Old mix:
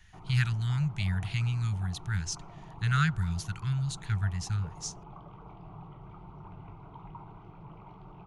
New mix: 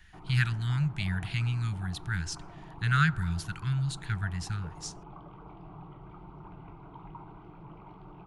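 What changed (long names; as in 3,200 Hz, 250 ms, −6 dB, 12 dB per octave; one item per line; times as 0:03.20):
speech: send +10.0 dB
master: add thirty-one-band graphic EQ 100 Hz −6 dB, 315 Hz +7 dB, 1,600 Hz +4 dB, 6,300 Hz −7 dB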